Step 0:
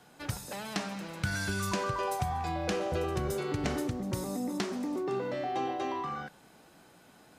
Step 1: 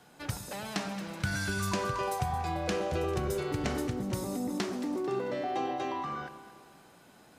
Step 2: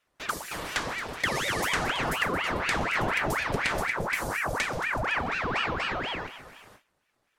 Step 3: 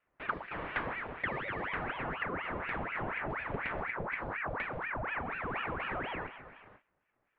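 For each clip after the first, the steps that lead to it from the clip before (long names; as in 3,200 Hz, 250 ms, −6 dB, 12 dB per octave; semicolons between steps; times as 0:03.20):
delay that swaps between a low-pass and a high-pass 111 ms, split 1,000 Hz, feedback 68%, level −11 dB
noise gate with hold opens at −45 dBFS; ring modulator whose carrier an LFO sweeps 1,200 Hz, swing 80%, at 4.1 Hz; level +6.5 dB
inverse Chebyshev low-pass filter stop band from 6,000 Hz, stop band 50 dB; speech leveller within 4 dB 0.5 s; level −7 dB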